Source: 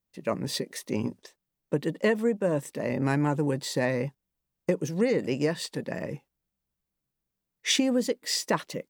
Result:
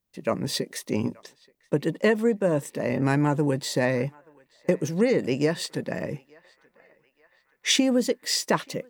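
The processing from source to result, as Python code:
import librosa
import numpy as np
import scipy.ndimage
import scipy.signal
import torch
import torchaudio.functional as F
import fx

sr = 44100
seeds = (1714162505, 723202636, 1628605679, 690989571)

y = fx.echo_banded(x, sr, ms=878, feedback_pct=64, hz=1500.0, wet_db=-23.0)
y = y * librosa.db_to_amplitude(3.0)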